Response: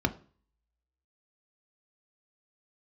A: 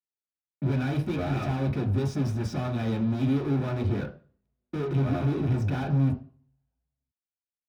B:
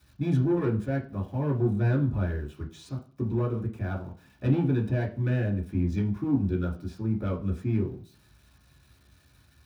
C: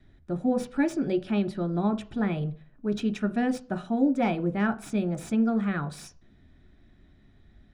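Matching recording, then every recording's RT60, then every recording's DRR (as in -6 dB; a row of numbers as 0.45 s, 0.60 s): C; 0.40 s, 0.40 s, 0.40 s; 1.0 dB, -5.0 dB, 7.5 dB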